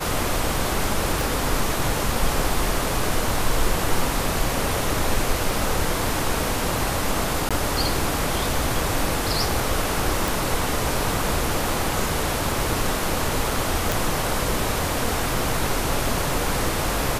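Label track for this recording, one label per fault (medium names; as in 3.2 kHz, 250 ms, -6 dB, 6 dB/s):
1.210000	1.210000	pop
7.490000	7.510000	dropout 16 ms
10.280000	10.280000	pop
13.920000	13.920000	pop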